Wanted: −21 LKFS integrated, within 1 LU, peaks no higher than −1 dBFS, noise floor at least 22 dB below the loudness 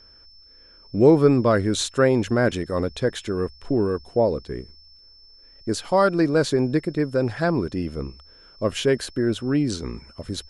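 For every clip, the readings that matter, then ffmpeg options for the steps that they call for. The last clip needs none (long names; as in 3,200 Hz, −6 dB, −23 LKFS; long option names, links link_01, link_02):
interfering tone 5,300 Hz; level of the tone −49 dBFS; integrated loudness −22.0 LKFS; sample peak −4.5 dBFS; target loudness −21.0 LKFS
→ -af "bandreject=frequency=5300:width=30"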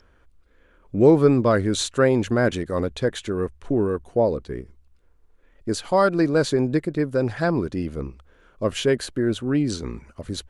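interfering tone none found; integrated loudness −22.0 LKFS; sample peak −4.5 dBFS; target loudness −21.0 LKFS
→ -af "volume=1dB"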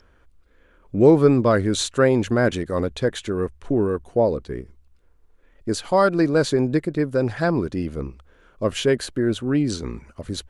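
integrated loudness −21.0 LKFS; sample peak −3.5 dBFS; background noise floor −57 dBFS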